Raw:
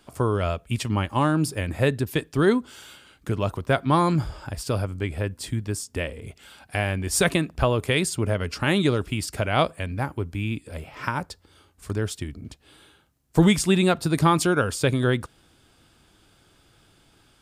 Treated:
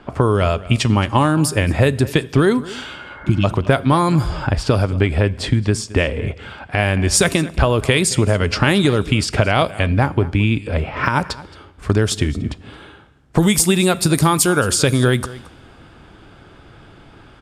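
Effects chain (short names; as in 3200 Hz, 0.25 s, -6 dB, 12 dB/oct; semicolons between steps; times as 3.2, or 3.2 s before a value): 3–3.42 spectral repair 370–2200 Hz before; low-pass opened by the level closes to 1800 Hz, open at -17 dBFS; bell 13000 Hz +5 dB 1.4 oct, from 11.06 s +14.5 dB; compressor 6:1, threshold -28 dBFS, peak gain reduction 14.5 dB; outdoor echo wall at 38 m, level -18 dB; reverb, pre-delay 3 ms, DRR 19.5 dB; maximiser +17 dB; gain -1 dB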